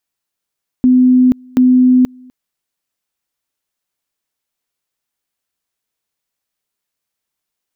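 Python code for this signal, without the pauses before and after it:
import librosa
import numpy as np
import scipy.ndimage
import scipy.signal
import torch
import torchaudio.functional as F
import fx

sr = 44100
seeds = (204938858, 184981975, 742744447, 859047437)

y = fx.two_level_tone(sr, hz=253.0, level_db=-5.5, drop_db=30.0, high_s=0.48, low_s=0.25, rounds=2)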